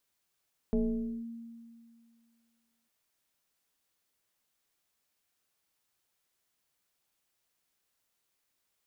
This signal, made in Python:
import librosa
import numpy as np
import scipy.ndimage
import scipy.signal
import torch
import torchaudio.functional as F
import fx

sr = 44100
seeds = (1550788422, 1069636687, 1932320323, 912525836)

y = fx.fm2(sr, length_s=2.15, level_db=-23.5, carrier_hz=231.0, ratio=0.88, index=1.1, index_s=0.52, decay_s=2.16, shape='linear')